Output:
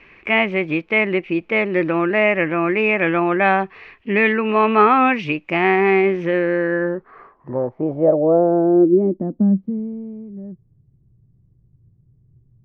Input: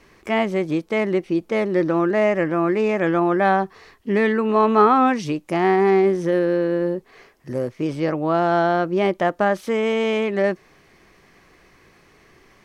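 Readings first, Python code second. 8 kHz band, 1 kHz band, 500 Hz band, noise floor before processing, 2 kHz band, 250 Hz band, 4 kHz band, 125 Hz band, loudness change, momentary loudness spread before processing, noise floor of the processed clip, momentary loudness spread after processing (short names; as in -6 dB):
n/a, +0.5 dB, +1.0 dB, -55 dBFS, +6.5 dB, +2.0 dB, +2.0 dB, +1.5 dB, +2.5 dB, 8 LU, -58 dBFS, 13 LU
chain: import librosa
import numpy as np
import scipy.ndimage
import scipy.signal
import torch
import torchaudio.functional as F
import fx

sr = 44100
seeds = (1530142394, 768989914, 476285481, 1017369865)

y = fx.filter_sweep_lowpass(x, sr, from_hz=2500.0, to_hz=120.0, start_s=6.27, end_s=10.24, q=5.5)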